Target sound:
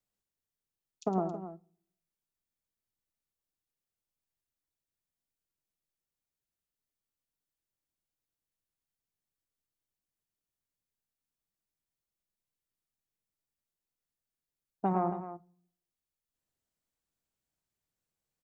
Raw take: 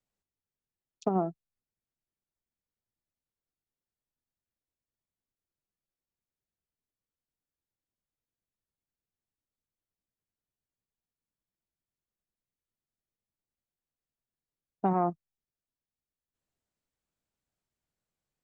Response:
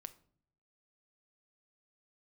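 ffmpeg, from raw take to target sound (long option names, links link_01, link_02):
-filter_complex "[0:a]aecho=1:1:108|271:0.335|0.237,asplit=2[link_01][link_02];[1:a]atrim=start_sample=2205,highshelf=frequency=4000:gain=10.5[link_03];[link_02][link_03]afir=irnorm=-1:irlink=0,volume=-0.5dB[link_04];[link_01][link_04]amix=inputs=2:normalize=0,volume=-6.5dB"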